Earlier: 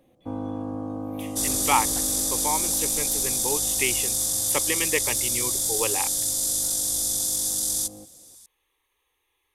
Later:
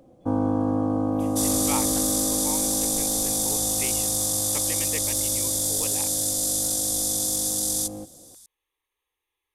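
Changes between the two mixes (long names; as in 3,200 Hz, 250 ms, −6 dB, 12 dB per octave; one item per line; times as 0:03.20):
speech −10.0 dB
first sound +8.0 dB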